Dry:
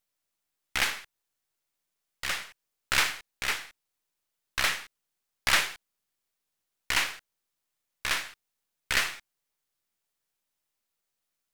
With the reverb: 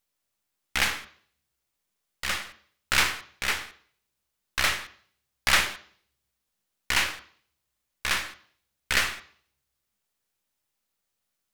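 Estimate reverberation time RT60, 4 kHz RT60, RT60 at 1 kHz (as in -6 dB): 0.50 s, 0.60 s, 0.50 s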